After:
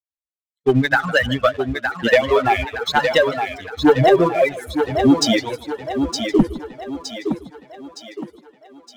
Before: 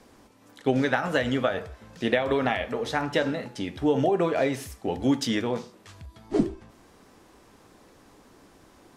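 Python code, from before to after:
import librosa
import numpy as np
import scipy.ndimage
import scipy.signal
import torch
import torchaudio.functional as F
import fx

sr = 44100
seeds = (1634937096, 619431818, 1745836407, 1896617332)

p1 = fx.bin_expand(x, sr, power=3.0)
p2 = scipy.signal.sosfilt(scipy.signal.butter(2, 8300.0, 'lowpass', fs=sr, output='sos'), p1)
p3 = fx.rider(p2, sr, range_db=10, speed_s=0.5)
p4 = p2 + (p3 * 10.0 ** (-2.5 / 20.0))
p5 = fx.leveller(p4, sr, passes=2)
p6 = p5 + fx.echo_thinned(p5, sr, ms=915, feedback_pct=48, hz=210.0, wet_db=-6, dry=0)
p7 = fx.echo_warbled(p6, sr, ms=155, feedback_pct=31, rate_hz=2.8, cents=201, wet_db=-17.0)
y = p7 * 10.0 ** (4.5 / 20.0)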